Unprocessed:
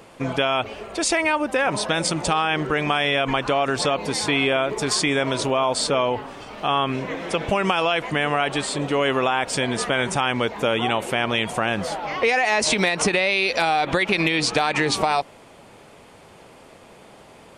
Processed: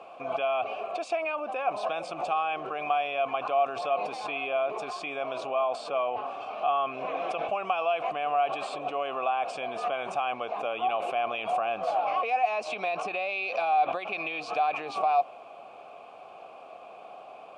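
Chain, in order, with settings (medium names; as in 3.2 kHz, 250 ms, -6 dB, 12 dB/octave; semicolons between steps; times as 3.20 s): in parallel at 0 dB: compressor with a negative ratio -29 dBFS, ratio -0.5; on the sum: vowel filter a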